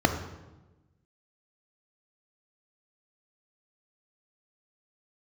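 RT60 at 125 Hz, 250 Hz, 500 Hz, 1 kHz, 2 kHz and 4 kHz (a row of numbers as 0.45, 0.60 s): 1.5, 1.4, 1.2, 1.0, 0.85, 0.80 s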